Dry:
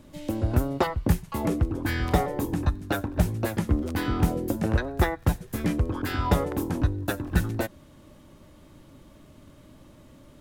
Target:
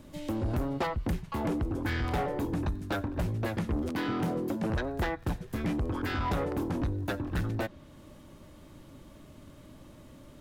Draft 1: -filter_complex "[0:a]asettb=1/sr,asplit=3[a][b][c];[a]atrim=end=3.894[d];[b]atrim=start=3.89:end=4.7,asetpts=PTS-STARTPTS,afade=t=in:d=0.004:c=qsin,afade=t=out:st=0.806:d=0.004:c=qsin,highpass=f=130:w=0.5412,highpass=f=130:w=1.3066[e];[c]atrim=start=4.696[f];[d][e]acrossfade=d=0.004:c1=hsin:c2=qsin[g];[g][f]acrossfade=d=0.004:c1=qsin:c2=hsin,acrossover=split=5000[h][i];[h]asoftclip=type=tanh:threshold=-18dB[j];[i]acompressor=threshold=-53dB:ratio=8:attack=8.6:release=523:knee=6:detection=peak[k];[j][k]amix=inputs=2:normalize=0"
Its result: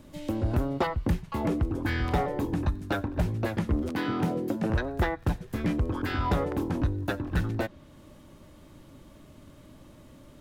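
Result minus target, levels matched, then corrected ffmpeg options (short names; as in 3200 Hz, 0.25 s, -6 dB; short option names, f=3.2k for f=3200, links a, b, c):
soft clip: distortion -6 dB
-filter_complex "[0:a]asettb=1/sr,asplit=3[a][b][c];[a]atrim=end=3.894[d];[b]atrim=start=3.89:end=4.7,asetpts=PTS-STARTPTS,afade=t=in:d=0.004:c=qsin,afade=t=out:st=0.806:d=0.004:c=qsin,highpass=f=130:w=0.5412,highpass=f=130:w=1.3066[e];[c]atrim=start=4.696[f];[d][e]acrossfade=d=0.004:c1=hsin:c2=qsin[g];[g][f]acrossfade=d=0.004:c1=qsin:c2=hsin,acrossover=split=5000[h][i];[h]asoftclip=type=tanh:threshold=-25.5dB[j];[i]acompressor=threshold=-53dB:ratio=8:attack=8.6:release=523:knee=6:detection=peak[k];[j][k]amix=inputs=2:normalize=0"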